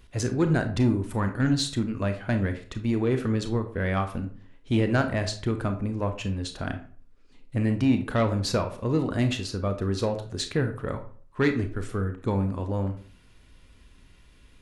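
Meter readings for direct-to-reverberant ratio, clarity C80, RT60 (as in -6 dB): 7.0 dB, 15.5 dB, 0.45 s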